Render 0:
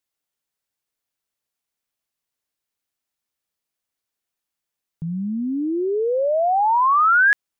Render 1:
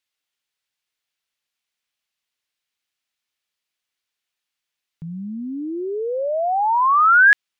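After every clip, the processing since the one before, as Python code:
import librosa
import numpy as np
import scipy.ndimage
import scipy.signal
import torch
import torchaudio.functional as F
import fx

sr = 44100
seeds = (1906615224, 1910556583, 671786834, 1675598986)

y = fx.peak_eq(x, sr, hz=2900.0, db=12.5, octaves=2.5)
y = y * librosa.db_to_amplitude(-5.0)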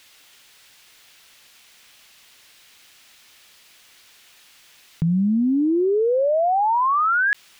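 y = fx.env_flatten(x, sr, amount_pct=100)
y = y * librosa.db_to_amplitude(-9.0)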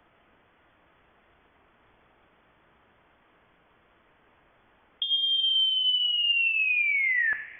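y = fx.freq_invert(x, sr, carrier_hz=3400)
y = fx.rev_double_slope(y, sr, seeds[0], early_s=0.56, late_s=2.6, knee_db=-14, drr_db=8.5)
y = y * librosa.db_to_amplitude(-6.5)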